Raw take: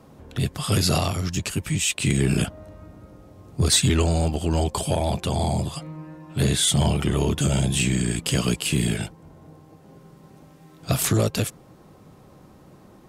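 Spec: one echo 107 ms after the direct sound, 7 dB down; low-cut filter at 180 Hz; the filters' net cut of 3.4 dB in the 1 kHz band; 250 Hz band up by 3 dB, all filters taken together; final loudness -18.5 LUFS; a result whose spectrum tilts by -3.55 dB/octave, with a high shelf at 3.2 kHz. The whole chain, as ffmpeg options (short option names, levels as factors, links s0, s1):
-af "highpass=180,equalizer=f=250:t=o:g=7,equalizer=f=1000:t=o:g=-6,highshelf=f=3200:g=4,aecho=1:1:107:0.447,volume=1.41"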